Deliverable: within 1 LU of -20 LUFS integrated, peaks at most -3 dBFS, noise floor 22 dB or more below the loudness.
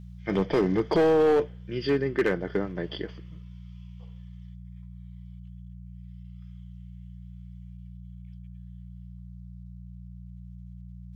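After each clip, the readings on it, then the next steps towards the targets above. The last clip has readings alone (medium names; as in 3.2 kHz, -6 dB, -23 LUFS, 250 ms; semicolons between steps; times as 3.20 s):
clipped samples 0.9%; clipping level -17.0 dBFS; hum 60 Hz; highest harmonic 180 Hz; hum level -41 dBFS; loudness -26.0 LUFS; peak level -17.0 dBFS; loudness target -20.0 LUFS
-> clip repair -17 dBFS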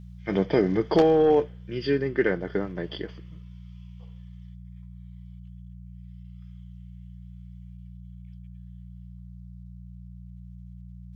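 clipped samples 0.0%; hum 60 Hz; highest harmonic 180 Hz; hum level -40 dBFS
-> de-hum 60 Hz, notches 3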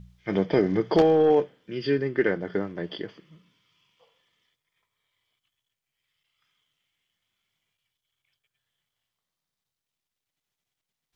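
hum not found; loudness -24.5 LUFS; peak level -8.0 dBFS; loudness target -20.0 LUFS
-> trim +4.5 dB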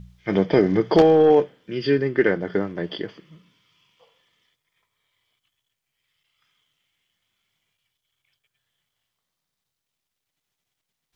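loudness -20.0 LUFS; peak level -3.5 dBFS; noise floor -83 dBFS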